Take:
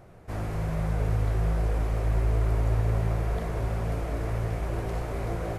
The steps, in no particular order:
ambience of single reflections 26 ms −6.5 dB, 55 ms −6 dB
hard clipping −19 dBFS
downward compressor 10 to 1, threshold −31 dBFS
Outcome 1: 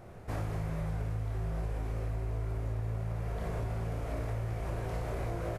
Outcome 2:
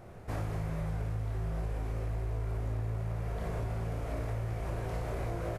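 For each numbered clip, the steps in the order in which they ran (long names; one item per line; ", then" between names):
ambience of single reflections, then downward compressor, then hard clipping
hard clipping, then ambience of single reflections, then downward compressor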